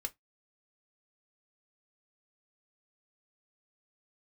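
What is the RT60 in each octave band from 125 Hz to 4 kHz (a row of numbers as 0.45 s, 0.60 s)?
0.20 s, 0.15 s, 0.15 s, 0.15 s, 0.15 s, 0.15 s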